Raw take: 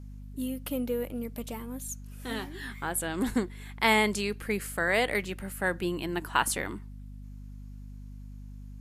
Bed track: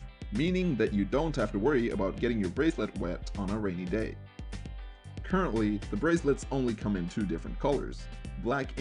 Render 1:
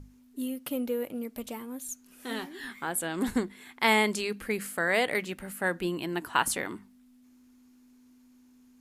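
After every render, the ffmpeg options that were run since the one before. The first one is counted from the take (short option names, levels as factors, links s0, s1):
-af "bandreject=f=50:t=h:w=6,bandreject=f=100:t=h:w=6,bandreject=f=150:t=h:w=6,bandreject=f=200:t=h:w=6"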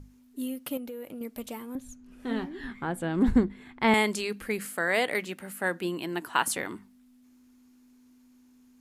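-filter_complex "[0:a]asettb=1/sr,asplit=3[s0][s1][s2];[s0]atrim=end=0.774[s3];[s1]atrim=start=0.77:end=1.21,asetpts=PTS-STARTPTS,afade=t=in:d=0.004:c=qsin,afade=t=out:st=0.436:d=0.004:c=qsin,acompressor=threshold=0.0158:ratio=6:attack=3.2:release=140:knee=1:detection=peak[s4];[s2]atrim=start=1.206[s5];[s3][s4]acrossfade=d=0.004:c1=hsin:c2=qsin[s6];[s6][s5]acrossfade=d=0.004:c1=qsin:c2=hsin,asettb=1/sr,asplit=3[s7][s8][s9];[s7]atrim=end=1.754[s10];[s8]atrim=start=1.75:end=3.94,asetpts=PTS-STARTPTS,afade=t=in:d=0.004:c=qsin,afade=t=out:st=2.186:d=0.004:c=qsin,aemphasis=mode=reproduction:type=riaa[s11];[s9]atrim=start=3.936[s12];[s10][s11]acrossfade=d=0.004:c1=hsin:c2=qsin[s13];[s13][s12]acrossfade=d=0.004:c1=qsin:c2=hsin,asettb=1/sr,asplit=3[s14][s15][s16];[s14]atrim=end=4.654[s17];[s15]atrim=start=4.65:end=6.57,asetpts=PTS-STARTPTS,afade=t=in:d=0.004:c=qsin,afade=t=out:st=1.916:d=0.004:c=qsin,highpass=150[s18];[s16]atrim=start=6.566[s19];[s17][s18]acrossfade=d=0.004:c1=hsin:c2=qsin[s20];[s20][s19]acrossfade=d=0.004:c1=qsin:c2=hsin"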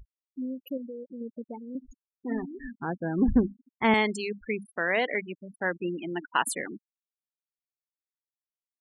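-af "afftfilt=real='re*gte(hypot(re,im),0.0398)':imag='im*gte(hypot(re,im),0.0398)':win_size=1024:overlap=0.75"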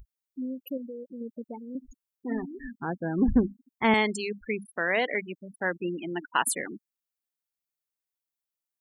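-af "highshelf=f=9400:g=8.5"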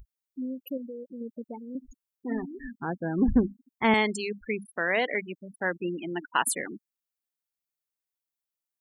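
-af anull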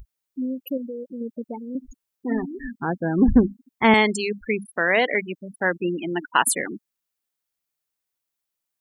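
-af "volume=2.11"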